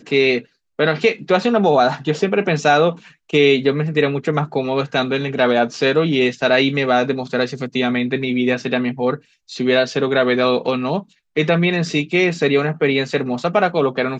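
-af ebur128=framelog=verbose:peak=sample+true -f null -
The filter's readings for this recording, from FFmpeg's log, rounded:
Integrated loudness:
  I:         -17.8 LUFS
  Threshold: -27.9 LUFS
Loudness range:
  LRA:         2.5 LU
  Threshold: -38.0 LUFS
  LRA low:   -19.2 LUFS
  LRA high:  -16.7 LUFS
Sample peak:
  Peak:       -2.8 dBFS
True peak:
  Peak:       -2.8 dBFS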